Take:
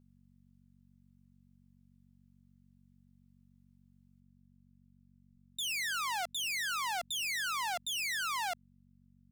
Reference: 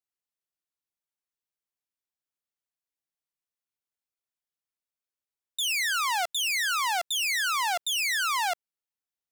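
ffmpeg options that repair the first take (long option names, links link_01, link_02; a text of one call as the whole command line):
ffmpeg -i in.wav -filter_complex "[0:a]bandreject=frequency=46.9:width_type=h:width=4,bandreject=frequency=93.8:width_type=h:width=4,bandreject=frequency=140.7:width_type=h:width=4,bandreject=frequency=187.6:width_type=h:width=4,bandreject=frequency=234.5:width_type=h:width=4,asplit=3[link_01][link_02][link_03];[link_01]afade=type=out:start_time=5.31:duration=0.02[link_04];[link_02]highpass=frequency=140:width=0.5412,highpass=frequency=140:width=1.3066,afade=type=in:start_time=5.31:duration=0.02,afade=type=out:start_time=5.43:duration=0.02[link_05];[link_03]afade=type=in:start_time=5.43:duration=0.02[link_06];[link_04][link_05][link_06]amix=inputs=3:normalize=0,asetnsamples=nb_out_samples=441:pad=0,asendcmd='4.2 volume volume 8dB',volume=0dB" out.wav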